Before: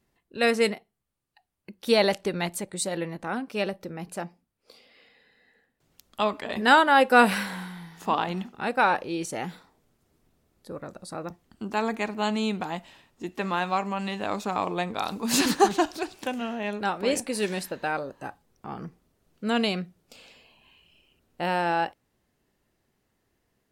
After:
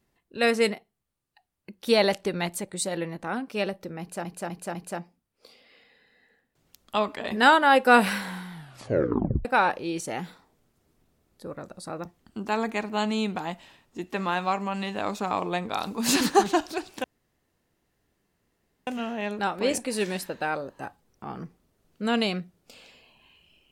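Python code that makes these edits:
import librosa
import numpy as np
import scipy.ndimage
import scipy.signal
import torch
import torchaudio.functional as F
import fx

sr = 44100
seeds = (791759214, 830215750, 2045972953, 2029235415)

y = fx.edit(x, sr, fx.repeat(start_s=4.0, length_s=0.25, count=4),
    fx.tape_stop(start_s=7.78, length_s=0.92),
    fx.insert_room_tone(at_s=16.29, length_s=1.83), tone=tone)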